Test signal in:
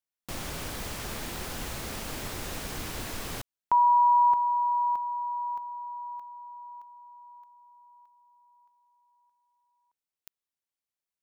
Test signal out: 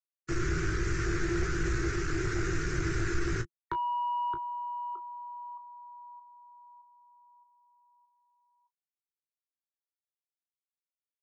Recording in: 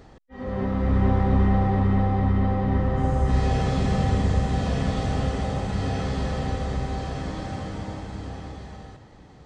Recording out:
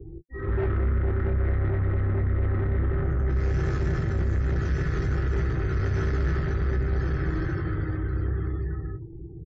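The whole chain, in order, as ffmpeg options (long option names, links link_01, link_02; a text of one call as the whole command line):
ffmpeg -i in.wav -filter_complex "[0:a]afftfilt=real='re*gte(hypot(re,im),0.00794)':imag='im*gte(hypot(re,im),0.00794)':win_size=1024:overlap=0.75,firequalizer=gain_entry='entry(160,0);entry(230,-28);entry(340,8);entry(560,-27);entry(860,-25);entry(1400,1);entry(3200,-19);entry(6000,-7)':delay=0.05:min_phase=1,acontrast=34,alimiter=limit=-16dB:level=0:latency=1:release=108,acrossover=split=89|350[link_01][link_02][link_03];[link_01]acompressor=threshold=-27dB:ratio=3[link_04];[link_02]acompressor=threshold=-34dB:ratio=2[link_05];[link_04][link_05][link_03]amix=inputs=3:normalize=0,aresample=16000,asoftclip=type=tanh:threshold=-27.5dB,aresample=44100,aecho=1:1:18|32:0.398|0.211,volume=5dB" out.wav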